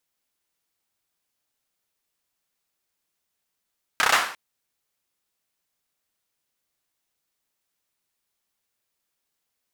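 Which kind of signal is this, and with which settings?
hand clap length 0.35 s, bursts 5, apart 31 ms, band 1300 Hz, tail 0.49 s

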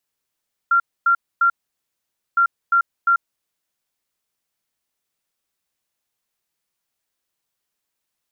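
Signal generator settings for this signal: beep pattern sine 1380 Hz, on 0.09 s, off 0.26 s, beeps 3, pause 0.87 s, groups 2, -12 dBFS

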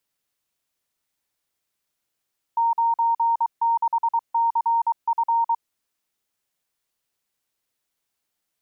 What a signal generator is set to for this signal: Morse "96CF" 23 wpm 925 Hz -17 dBFS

